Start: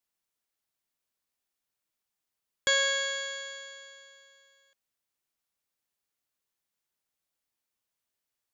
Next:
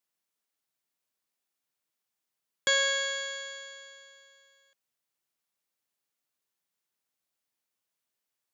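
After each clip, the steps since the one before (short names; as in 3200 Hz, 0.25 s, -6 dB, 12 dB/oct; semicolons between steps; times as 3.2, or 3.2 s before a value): HPF 110 Hz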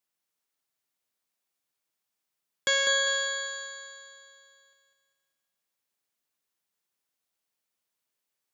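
thinning echo 0.199 s, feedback 42%, high-pass 200 Hz, level -5.5 dB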